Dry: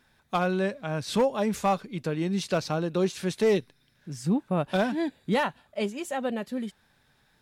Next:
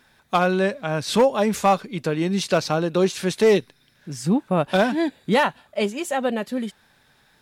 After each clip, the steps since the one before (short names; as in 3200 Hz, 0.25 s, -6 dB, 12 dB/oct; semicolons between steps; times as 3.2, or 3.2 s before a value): low shelf 190 Hz -6 dB; gain +7.5 dB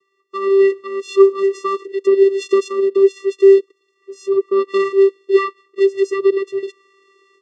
vocoder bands 8, square 391 Hz; AGC gain up to 14.5 dB; gain -1 dB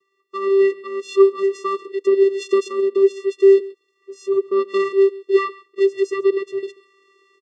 echo 0.137 s -20.5 dB; gain -2.5 dB